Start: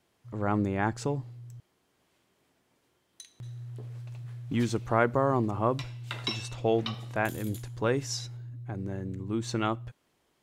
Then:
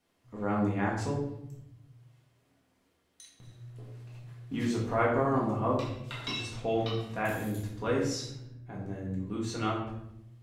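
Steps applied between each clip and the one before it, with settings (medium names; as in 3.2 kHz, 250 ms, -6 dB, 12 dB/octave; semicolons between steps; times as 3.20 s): reverberation RT60 0.80 s, pre-delay 4 ms, DRR -5 dB; trim -7.5 dB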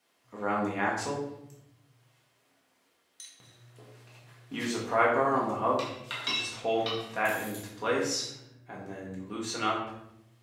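high-pass 720 Hz 6 dB/octave; trim +6 dB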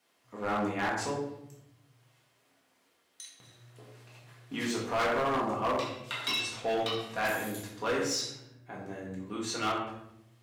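hard clipper -25.5 dBFS, distortion -10 dB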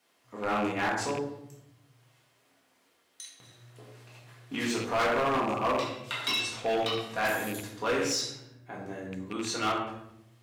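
rattle on loud lows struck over -38 dBFS, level -30 dBFS; hum notches 50/100/150/200 Hz; trim +2 dB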